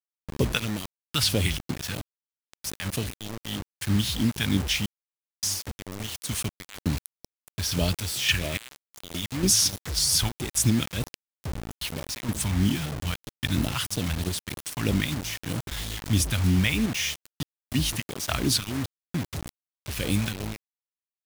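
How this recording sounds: phasing stages 2, 3.1 Hz, lowest notch 340–1500 Hz; random-step tremolo, depth 100%; a quantiser's noise floor 6-bit, dither none

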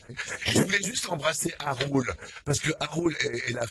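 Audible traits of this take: phasing stages 2, 3.7 Hz, lowest notch 220–4000 Hz; chopped level 7.2 Hz, depth 65%, duty 55%; AAC

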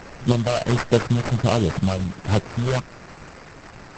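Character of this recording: a quantiser's noise floor 6-bit, dither triangular; phasing stages 12, 1.4 Hz, lowest notch 270–4900 Hz; aliases and images of a low sample rate 3500 Hz, jitter 20%; Opus

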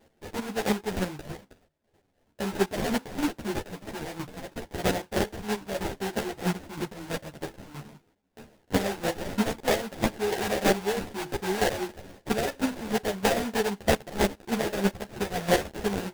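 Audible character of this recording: chopped level 3.1 Hz, depth 65%, duty 20%; aliases and images of a low sample rate 1200 Hz, jitter 20%; a shimmering, thickened sound

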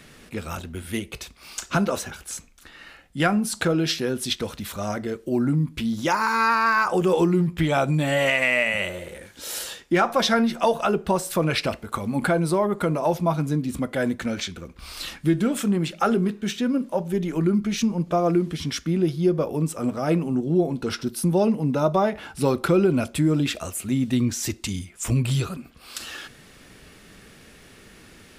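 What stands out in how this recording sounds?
noise floor -50 dBFS; spectral tilt -5.5 dB/oct

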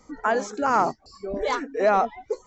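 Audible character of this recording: noise floor -59 dBFS; spectral tilt -3.0 dB/oct

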